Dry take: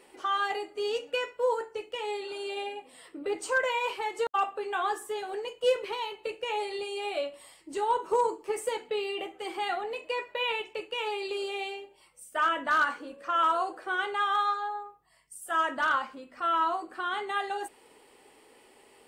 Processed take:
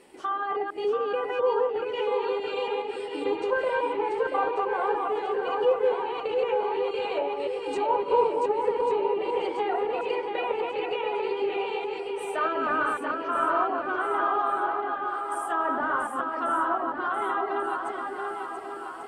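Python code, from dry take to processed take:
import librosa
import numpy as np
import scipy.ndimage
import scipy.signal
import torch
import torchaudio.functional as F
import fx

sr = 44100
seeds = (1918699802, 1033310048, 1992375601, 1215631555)

y = fx.reverse_delay(x, sr, ms=141, wet_db=-2.0)
y = fx.env_lowpass_down(y, sr, base_hz=1300.0, full_db=-26.0)
y = fx.peak_eq(y, sr, hz=150.0, db=6.5, octaves=2.9)
y = fx.echo_swing(y, sr, ms=1141, ratio=1.5, feedback_pct=42, wet_db=-5)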